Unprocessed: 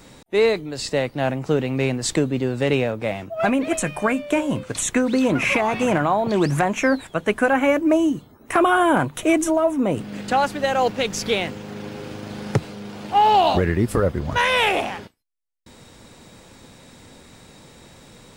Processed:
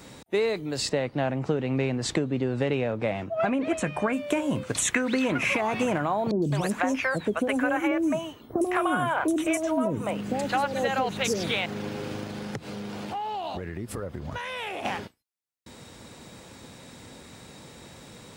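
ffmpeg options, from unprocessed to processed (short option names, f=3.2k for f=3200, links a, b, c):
-filter_complex "[0:a]asettb=1/sr,asplit=3[a][b][c];[a]atrim=end=0.894[d];[b]atrim=start=0.89:end=4.13,asetpts=PTS-STARTPTS,afade=t=in:d=0.004:c=qsin,afade=t=out:st=3.236:d=0.004:c=qsin,aemphasis=mode=reproduction:type=50fm[e];[c]atrim=start=4.126[f];[d][e]acrossfade=d=0.004:c1=hsin:c2=qsin[g];[g][f]acrossfade=d=0.004:c1=qsin:c2=hsin,asettb=1/sr,asplit=3[h][i][j];[h]atrim=end=4.854[k];[i]atrim=start=4.85:end=5.38,asetpts=PTS-STARTPTS,afade=t=in:d=0.004:c=qsin,afade=t=out:st=0.526:d=0.004:c=qsin,equalizer=f=2k:w=0.84:g=9.5[l];[j]atrim=start=5.376[m];[k][l]acrossfade=d=0.004:c1=hsin:c2=qsin[n];[n][m]acrossfade=d=0.004:c1=qsin:c2=hsin,asettb=1/sr,asplit=3[o][p][q];[o]atrim=end=6.314[r];[p]atrim=start=6.31:end=11.66,asetpts=PTS-STARTPTS,afade=t=in:d=0.004:c=qsin,afade=t=out:st=5.346:d=0.004:c=qsin,acrossover=split=560|4800[s][t][u];[u]adelay=110[v];[t]adelay=210[w];[s][w][v]amix=inputs=3:normalize=0,atrim=end_sample=235935[x];[q]atrim=start=11.656[y];[r][x]acrossfade=d=0.004:c1=hsin:c2=qsin[z];[z][y]acrossfade=d=0.004:c1=qsin:c2=hsin,asettb=1/sr,asplit=3[aa][ab][ac];[aa]atrim=end=12.234[ad];[ab]atrim=start=12.23:end=14.85,asetpts=PTS-STARTPTS,afade=t=in:d=0.004:c=qsin,afade=t=out:st=2.616:d=0.004:c=qsin,acompressor=threshold=-31dB:ratio=6:attack=3.2:release=140:knee=1:detection=peak[ae];[ac]atrim=start=14.846[af];[ad][ae]acrossfade=d=0.004:c1=hsin:c2=qsin[ag];[ag][af]acrossfade=d=0.004:c1=qsin:c2=hsin,highpass=55,acompressor=threshold=-22dB:ratio=6"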